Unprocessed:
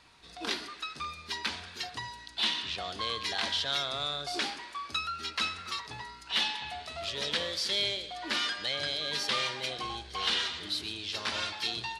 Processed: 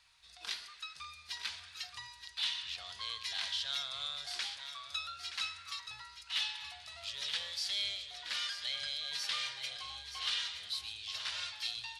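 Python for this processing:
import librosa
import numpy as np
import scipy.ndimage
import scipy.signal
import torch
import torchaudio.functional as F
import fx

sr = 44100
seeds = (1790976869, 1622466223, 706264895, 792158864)

y = fx.tone_stack(x, sr, knobs='10-0-10')
y = y + 10.0 ** (-9.5 / 20.0) * np.pad(y, (int(924 * sr / 1000.0), 0))[:len(y)]
y = y * librosa.db_to_amplitude(-3.5)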